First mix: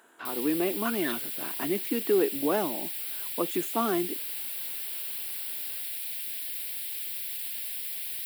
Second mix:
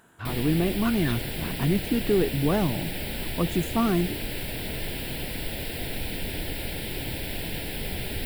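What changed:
speech: remove high-pass filter 280 Hz 24 dB per octave
background: remove first difference

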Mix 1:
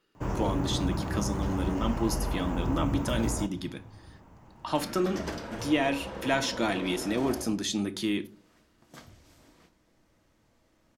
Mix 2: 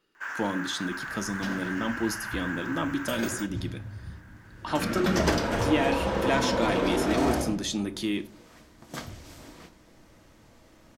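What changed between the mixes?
first sound: add high-pass with resonance 1,600 Hz, resonance Q 8.7
second sound +11.5 dB

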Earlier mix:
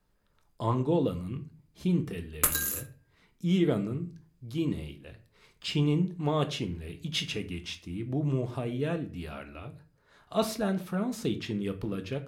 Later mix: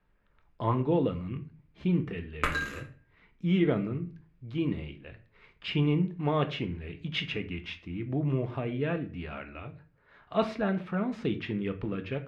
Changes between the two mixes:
background: send +10.0 dB
master: add low-pass with resonance 2,300 Hz, resonance Q 1.6

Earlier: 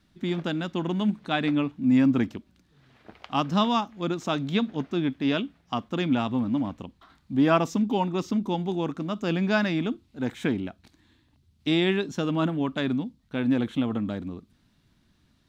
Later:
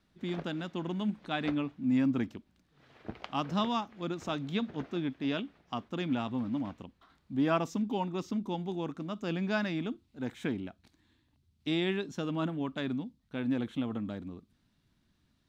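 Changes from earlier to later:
speech −7.5 dB
background: add low-shelf EQ 390 Hz +11.5 dB

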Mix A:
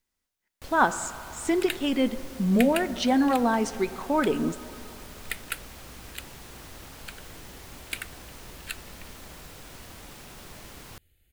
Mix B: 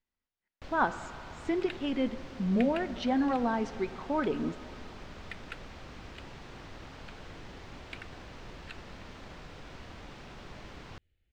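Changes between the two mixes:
speech −5.5 dB
second sound −8.0 dB
master: add high-frequency loss of the air 170 metres

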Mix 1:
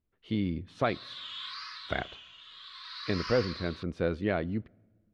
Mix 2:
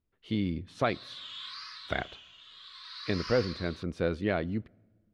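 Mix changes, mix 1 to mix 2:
background −4.0 dB
master: add high-shelf EQ 5,900 Hz +9.5 dB

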